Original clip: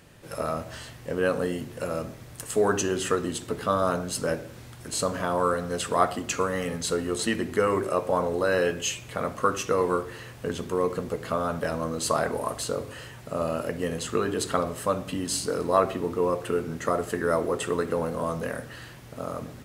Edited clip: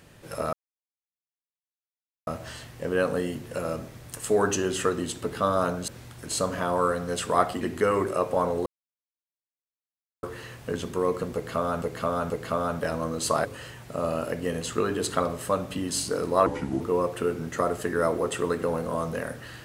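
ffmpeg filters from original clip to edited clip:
-filter_complex "[0:a]asplit=11[a][b][c][d][e][f][g][h][i][j][k];[a]atrim=end=0.53,asetpts=PTS-STARTPTS,afade=t=out:st=0.526:d=0.004:c=hsin,apad=pad_dur=1.74[l];[b]atrim=start=0.53:end=4.142,asetpts=PTS-STARTPTS,afade=t=in:d=0.004:c=hsin[m];[c]atrim=start=4.498:end=6.232[n];[d]atrim=start=7.368:end=8.42,asetpts=PTS-STARTPTS,afade=t=out:st=1.048:d=0.004:c=hsin[o];[e]atrim=start=8.42:end=9.99,asetpts=PTS-STARTPTS,volume=0[p];[f]atrim=start=9.99:end=11.582,asetpts=PTS-STARTPTS,afade=t=in:d=0.004:c=hsin[q];[g]atrim=start=11.098:end=11.582[r];[h]atrim=start=11.098:end=12.252[s];[i]atrim=start=12.818:end=15.834[t];[j]atrim=start=15.83:end=16.09,asetpts=PTS-STARTPTS,asetrate=33075,aresample=44100[u];[k]atrim=start=16.086[v];[l][m]concat=n=2:v=0:a=1[w];[w][n]acrossfade=d=0.004:c1=hsin:c2=hsin[x];[o][p][q]concat=n=3:v=0:a=1[y];[x][y]acrossfade=d=0.004:c1=hsin:c2=hsin[z];[z][r]acrossfade=d=0.004:c1=hsin:c2=hsin[aa];[aa][s]acrossfade=d=0.004:c1=hsin:c2=hsin[ab];[ab][t]acrossfade=d=0.004:c1=hsin:c2=hsin[ac];[ac][u]acrossfade=d=0.004:c1=hsin:c2=hsin[ad];[ad][v]acrossfade=d=0.004:c1=hsin:c2=hsin"

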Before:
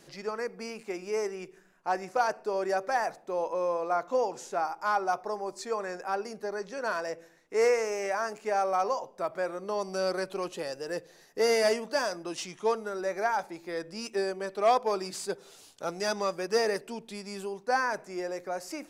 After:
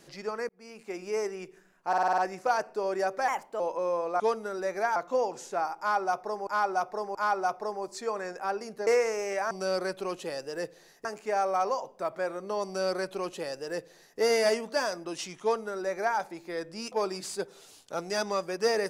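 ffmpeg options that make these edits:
-filter_complex "[0:a]asplit=18[a][b][c][d][e][f][g][h][i][j][k][l][m][n][o][p][q][r];[a]atrim=end=0.49,asetpts=PTS-STARTPTS,afade=t=out:st=0.486:d=0.004:c=hsin[s];[b]atrim=start=0.49:end=1.932,asetpts=PTS-STARTPTS,afade=t=in:d=0.52[t];[c]atrim=start=1.878:end=1.932[u];[d]atrim=start=1.878:end=1.932[v];[e]atrim=start=1.878:end=1.932[w];[f]atrim=start=1.878:end=1.932[x];[g]atrim=start=1.878:end=1.932[y];[h]atrim=start=1.878:end=2.984[z];[i]atrim=start=2.98:end=3.36,asetpts=PTS-STARTPTS,asetrate=52479,aresample=44100,atrim=end_sample=14082,asetpts=PTS-STARTPTS[aa];[j]atrim=start=3.356:end=3.962[ab];[k]atrim=start=12.608:end=13.372[ac];[l]atrim=start=3.958:end=5.472[ad];[m]atrim=start=4.788:end=5.472[ae];[n]atrim=start=4.788:end=6.512[af];[o]atrim=start=7.598:end=8.242[ag];[p]atrim=start=9.838:end=11.382[ah];[q]atrim=start=8.238:end=14.112[ai];[r]atrim=start=14.818[aj];[s][t]concat=n=2:v=0:a=1[ak];[ak][u]acrossfade=d=0.004:c1=hsin:c2=hsin[al];[al][v]acrossfade=d=0.004:c1=hsin:c2=hsin[am];[am][w]acrossfade=d=0.004:c1=hsin:c2=hsin[an];[an][x]acrossfade=d=0.004:c1=hsin:c2=hsin[ao];[ao][y]acrossfade=d=0.004:c1=hsin:c2=hsin[ap];[ap][z]acrossfade=d=0.004:c1=hsin:c2=hsin[aq];[aq][aa]acrossfade=d=0.004:c1=hsin:c2=hsin[ar];[ar][ab]acrossfade=d=0.004:c1=hsin:c2=hsin[as];[as][ac]acrossfade=d=0.004:c1=hsin:c2=hsin[at];[at][ad]acrossfade=d=0.004:c1=hsin:c2=hsin[au];[au][ae]acrossfade=d=0.004:c1=hsin:c2=hsin[av];[av][af]acrossfade=d=0.004:c1=hsin:c2=hsin[aw];[aw][ag]acrossfade=d=0.004:c1=hsin:c2=hsin[ax];[ax][ah]acrossfade=d=0.004:c1=hsin:c2=hsin[ay];[ay][ai]acrossfade=d=0.004:c1=hsin:c2=hsin[az];[az][aj]acrossfade=d=0.004:c1=hsin:c2=hsin"

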